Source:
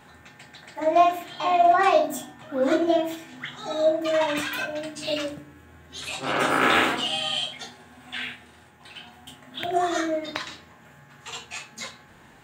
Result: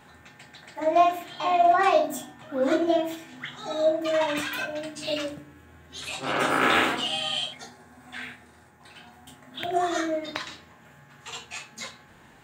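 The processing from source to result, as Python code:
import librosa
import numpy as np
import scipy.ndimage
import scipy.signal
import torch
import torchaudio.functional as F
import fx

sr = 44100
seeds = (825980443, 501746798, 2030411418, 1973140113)

y = fx.peak_eq(x, sr, hz=3000.0, db=fx.line((7.53, -14.0), (9.57, -6.0)), octaves=0.58, at=(7.53, 9.57), fade=0.02)
y = y * librosa.db_to_amplitude(-1.5)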